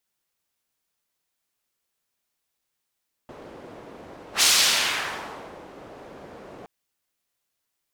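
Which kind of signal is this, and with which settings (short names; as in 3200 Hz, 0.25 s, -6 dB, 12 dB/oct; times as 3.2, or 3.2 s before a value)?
whoosh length 3.37 s, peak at 1.13, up 0.10 s, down 1.28 s, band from 500 Hz, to 5300 Hz, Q 0.98, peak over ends 26 dB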